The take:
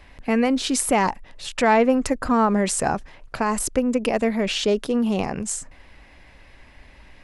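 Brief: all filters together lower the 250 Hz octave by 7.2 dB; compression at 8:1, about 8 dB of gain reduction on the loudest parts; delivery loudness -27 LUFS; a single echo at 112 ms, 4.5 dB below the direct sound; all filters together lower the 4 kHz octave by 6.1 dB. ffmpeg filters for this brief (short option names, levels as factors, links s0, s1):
-af "equalizer=f=250:t=o:g=-8,equalizer=f=4000:t=o:g=-8.5,acompressor=threshold=0.0708:ratio=8,aecho=1:1:112:0.596,volume=1.06"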